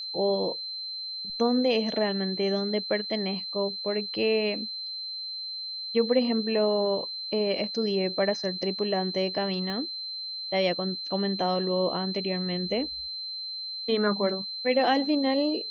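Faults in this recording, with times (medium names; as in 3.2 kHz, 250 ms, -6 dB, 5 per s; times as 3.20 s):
whine 4.1 kHz -33 dBFS
9.70 s: pop -22 dBFS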